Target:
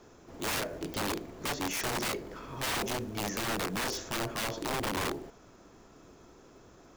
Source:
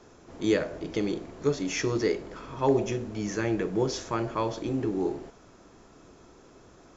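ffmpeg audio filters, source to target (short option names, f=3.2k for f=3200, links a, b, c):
-af "acrusher=bits=6:mode=log:mix=0:aa=0.000001,aeval=exprs='(mod(17.8*val(0)+1,2)-1)/17.8':c=same,volume=-2dB"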